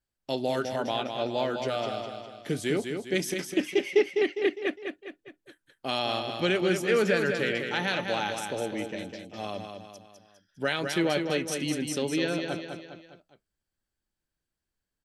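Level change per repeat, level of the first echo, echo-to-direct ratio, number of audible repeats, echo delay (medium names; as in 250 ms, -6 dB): -6.5 dB, -6.0 dB, -5.0 dB, 4, 203 ms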